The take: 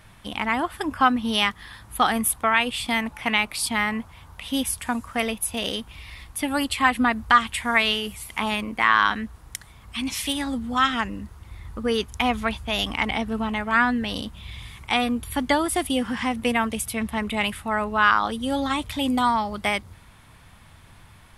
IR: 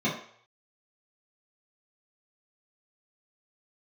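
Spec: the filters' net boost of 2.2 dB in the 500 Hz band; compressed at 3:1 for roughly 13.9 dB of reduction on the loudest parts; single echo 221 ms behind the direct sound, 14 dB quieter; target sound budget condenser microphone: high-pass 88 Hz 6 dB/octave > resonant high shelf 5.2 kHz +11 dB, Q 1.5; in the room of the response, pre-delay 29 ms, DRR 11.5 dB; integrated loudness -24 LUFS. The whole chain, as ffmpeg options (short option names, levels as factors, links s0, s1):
-filter_complex "[0:a]equalizer=f=500:t=o:g=3,acompressor=threshold=0.0282:ratio=3,aecho=1:1:221:0.2,asplit=2[s0][s1];[1:a]atrim=start_sample=2205,adelay=29[s2];[s1][s2]afir=irnorm=-1:irlink=0,volume=0.075[s3];[s0][s3]amix=inputs=2:normalize=0,highpass=f=88:p=1,highshelf=f=5200:t=q:w=1.5:g=11,volume=1.68"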